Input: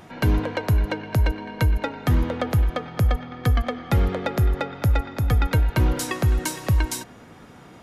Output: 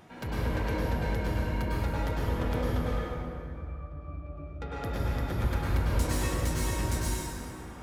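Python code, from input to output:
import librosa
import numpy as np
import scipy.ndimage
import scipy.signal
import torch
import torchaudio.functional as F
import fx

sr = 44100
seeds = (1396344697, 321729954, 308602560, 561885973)

y = 10.0 ** (-24.5 / 20.0) * np.tanh(x / 10.0 ** (-24.5 / 20.0))
y = fx.octave_resonator(y, sr, note='D', decay_s=0.23, at=(2.93, 4.62))
y = fx.rev_plate(y, sr, seeds[0], rt60_s=2.6, hf_ratio=0.6, predelay_ms=90, drr_db=-7.5)
y = y * librosa.db_to_amplitude(-8.5)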